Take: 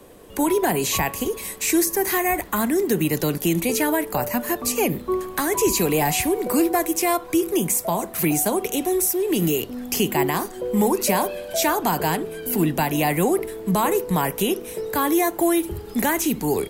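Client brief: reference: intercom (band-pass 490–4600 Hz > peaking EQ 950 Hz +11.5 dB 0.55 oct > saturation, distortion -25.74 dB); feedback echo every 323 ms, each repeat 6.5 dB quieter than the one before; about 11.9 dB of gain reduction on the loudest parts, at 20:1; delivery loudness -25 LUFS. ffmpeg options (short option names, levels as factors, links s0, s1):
-af "acompressor=threshold=0.0447:ratio=20,highpass=490,lowpass=4600,equalizer=f=950:t=o:w=0.55:g=11.5,aecho=1:1:323|646|969|1292|1615|1938:0.473|0.222|0.105|0.0491|0.0231|0.0109,asoftclip=threshold=0.168,volume=2.11"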